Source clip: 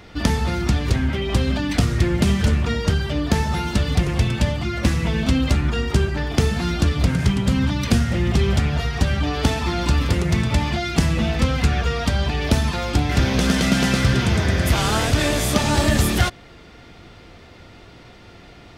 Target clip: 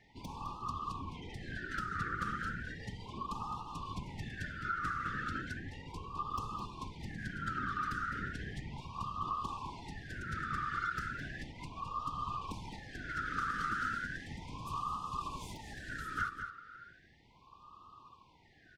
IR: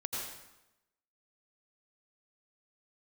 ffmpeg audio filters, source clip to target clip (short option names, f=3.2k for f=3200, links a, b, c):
-filter_complex "[0:a]acrossover=split=460 6300:gain=0.141 1 0.1[a][b][c];[a][b][c]amix=inputs=3:normalize=0,aeval=exprs='0.355*(cos(1*acos(clip(val(0)/0.355,-1,1)))-cos(1*PI/2))+0.0708*(cos(4*acos(clip(val(0)/0.355,-1,1)))-cos(4*PI/2))':c=same,firequalizer=gain_entry='entry(200,0);entry(620,-25);entry(1200,15);entry(2200,-15);entry(5500,-12);entry(10000,-6)':delay=0.05:min_phase=1,afftfilt=real='hypot(re,im)*cos(2*PI*random(0))':imag='hypot(re,im)*sin(2*PI*random(1))':win_size=512:overlap=0.75,acompressor=threshold=-33dB:ratio=6,asplit=2[d][e];[e]adelay=209.9,volume=-7dB,highshelf=f=4k:g=-4.72[f];[d][f]amix=inputs=2:normalize=0,afftfilt=real='re*(1-between(b*sr/1024,800*pow(1800/800,0.5+0.5*sin(2*PI*0.35*pts/sr))/1.41,800*pow(1800/800,0.5+0.5*sin(2*PI*0.35*pts/sr))*1.41))':imag='im*(1-between(b*sr/1024,800*pow(1800/800,0.5+0.5*sin(2*PI*0.35*pts/sr))/1.41,800*pow(1800/800,0.5+0.5*sin(2*PI*0.35*pts/sr))*1.41))':win_size=1024:overlap=0.75"